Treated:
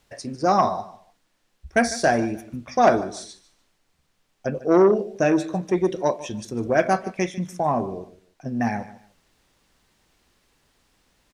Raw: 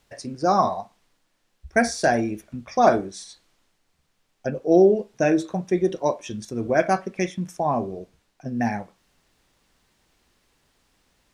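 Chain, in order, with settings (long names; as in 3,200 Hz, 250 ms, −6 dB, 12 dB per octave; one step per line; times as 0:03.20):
repeating echo 149 ms, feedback 26%, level −17 dB
saturating transformer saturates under 790 Hz
level +1 dB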